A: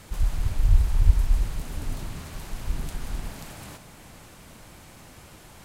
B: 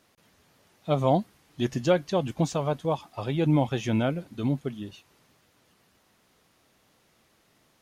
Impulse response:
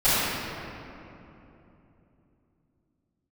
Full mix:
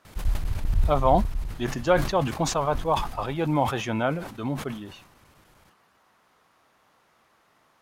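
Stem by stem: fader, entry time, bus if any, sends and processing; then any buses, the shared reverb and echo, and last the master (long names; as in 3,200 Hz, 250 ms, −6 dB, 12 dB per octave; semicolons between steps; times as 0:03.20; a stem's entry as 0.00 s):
+0.5 dB, 0.05 s, no send, parametric band 7,700 Hz −4.5 dB 0.77 octaves; square-wave tremolo 10 Hz, duty 90%; automatic ducking −11 dB, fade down 1.55 s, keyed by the second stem
−5.0 dB, 0.00 s, no send, parametric band 1,100 Hz +13 dB 1.9 octaves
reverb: not used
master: level that may fall only so fast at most 77 dB per second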